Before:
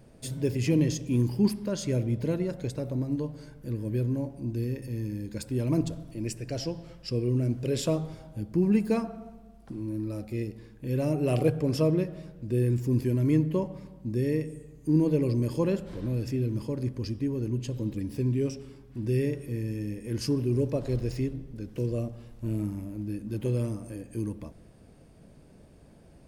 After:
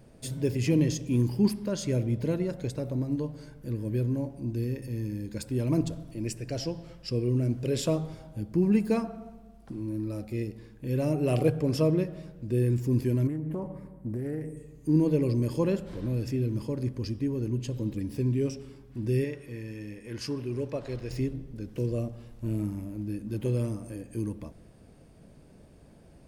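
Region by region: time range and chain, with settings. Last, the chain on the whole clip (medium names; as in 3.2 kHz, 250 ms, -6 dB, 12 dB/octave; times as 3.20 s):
13.27–14.57 s: high-order bell 4.2 kHz -12.5 dB + compression 16:1, threshold -28 dBFS + loudspeaker Doppler distortion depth 0.21 ms
19.24–21.11 s: low-pass 1.6 kHz 6 dB/octave + tilt shelf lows -8.5 dB, about 750 Hz
whole clip: none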